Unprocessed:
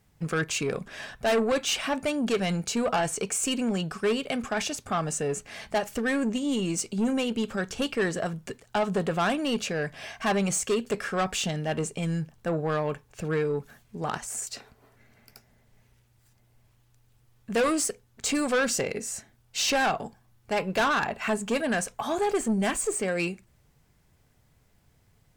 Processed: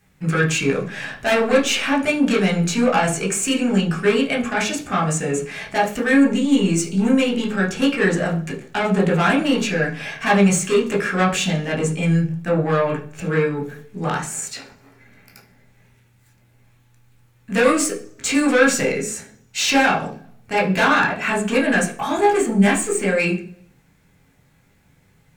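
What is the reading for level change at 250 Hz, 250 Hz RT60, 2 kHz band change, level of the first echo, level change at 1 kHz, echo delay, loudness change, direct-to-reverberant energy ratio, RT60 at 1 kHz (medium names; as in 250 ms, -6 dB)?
+10.5 dB, 0.80 s, +10.5 dB, no echo, +8.0 dB, no echo, +9.0 dB, -2.5 dB, 0.40 s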